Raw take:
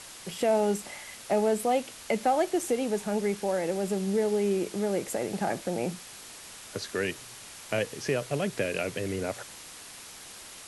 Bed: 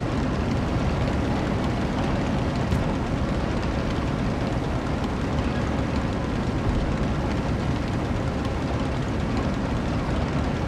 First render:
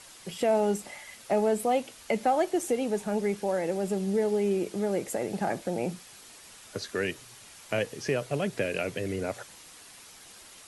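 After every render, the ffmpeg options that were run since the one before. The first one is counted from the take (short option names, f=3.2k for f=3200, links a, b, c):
-af "afftdn=nr=6:nf=-46"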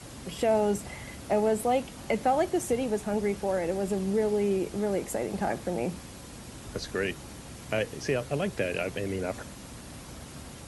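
-filter_complex "[1:a]volume=-20dB[a];[0:a][a]amix=inputs=2:normalize=0"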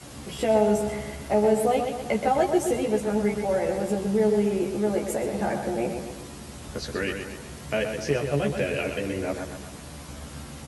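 -filter_complex "[0:a]asplit=2[a][b];[b]adelay=14,volume=-2dB[c];[a][c]amix=inputs=2:normalize=0,asplit=2[d][e];[e]adelay=125,lowpass=f=3.8k:p=1,volume=-6dB,asplit=2[f][g];[g]adelay=125,lowpass=f=3.8k:p=1,volume=0.52,asplit=2[h][i];[i]adelay=125,lowpass=f=3.8k:p=1,volume=0.52,asplit=2[j][k];[k]adelay=125,lowpass=f=3.8k:p=1,volume=0.52,asplit=2[l][m];[m]adelay=125,lowpass=f=3.8k:p=1,volume=0.52,asplit=2[n][o];[o]adelay=125,lowpass=f=3.8k:p=1,volume=0.52[p];[d][f][h][j][l][n][p]amix=inputs=7:normalize=0"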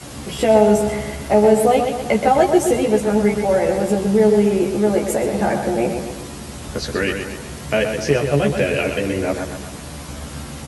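-af "volume=8dB"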